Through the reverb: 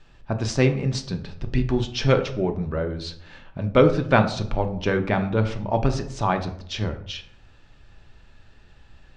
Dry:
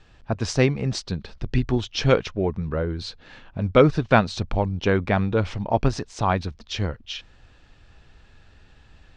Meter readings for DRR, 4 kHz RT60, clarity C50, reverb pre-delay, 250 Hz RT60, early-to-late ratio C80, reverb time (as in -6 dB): 5.5 dB, 0.40 s, 12.0 dB, 3 ms, 0.75 s, 15.5 dB, 0.65 s